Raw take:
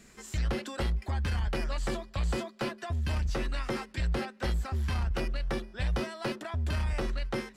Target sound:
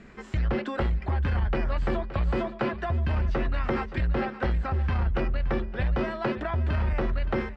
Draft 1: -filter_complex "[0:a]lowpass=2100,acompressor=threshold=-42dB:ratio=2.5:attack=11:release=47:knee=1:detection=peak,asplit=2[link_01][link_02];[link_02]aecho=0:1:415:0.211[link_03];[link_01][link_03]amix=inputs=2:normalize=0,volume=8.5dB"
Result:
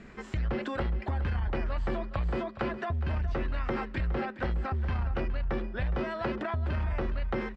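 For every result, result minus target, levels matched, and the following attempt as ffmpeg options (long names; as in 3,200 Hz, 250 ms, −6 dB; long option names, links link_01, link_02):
echo 156 ms early; downward compressor: peak gain reduction +4.5 dB
-filter_complex "[0:a]lowpass=2100,acompressor=threshold=-42dB:ratio=2.5:attack=11:release=47:knee=1:detection=peak,asplit=2[link_01][link_02];[link_02]aecho=0:1:571:0.211[link_03];[link_01][link_03]amix=inputs=2:normalize=0,volume=8.5dB"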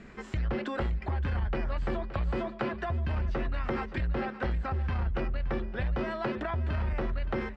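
downward compressor: peak gain reduction +4.5 dB
-filter_complex "[0:a]lowpass=2100,acompressor=threshold=-34.5dB:ratio=2.5:attack=11:release=47:knee=1:detection=peak,asplit=2[link_01][link_02];[link_02]aecho=0:1:571:0.211[link_03];[link_01][link_03]amix=inputs=2:normalize=0,volume=8.5dB"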